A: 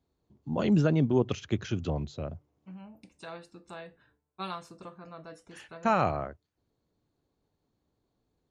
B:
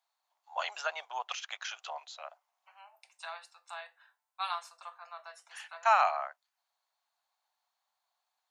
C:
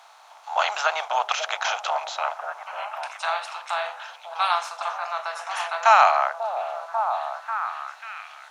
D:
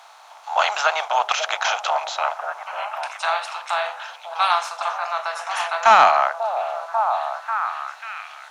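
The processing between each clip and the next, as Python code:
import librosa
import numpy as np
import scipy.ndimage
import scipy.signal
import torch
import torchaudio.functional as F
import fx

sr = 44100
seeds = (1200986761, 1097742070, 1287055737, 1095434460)

y1 = scipy.signal.sosfilt(scipy.signal.butter(8, 720.0, 'highpass', fs=sr, output='sos'), x)
y1 = F.gain(torch.from_numpy(y1), 3.5).numpy()
y2 = fx.bin_compress(y1, sr, power=0.6)
y2 = fx.echo_stepped(y2, sr, ms=542, hz=500.0, octaves=0.7, feedback_pct=70, wet_db=-4.5)
y2 = F.gain(torch.from_numpy(y2), 8.0).numpy()
y3 = 10.0 ** (-7.0 / 20.0) * np.tanh(y2 / 10.0 ** (-7.0 / 20.0))
y3 = F.gain(torch.from_numpy(y3), 4.0).numpy()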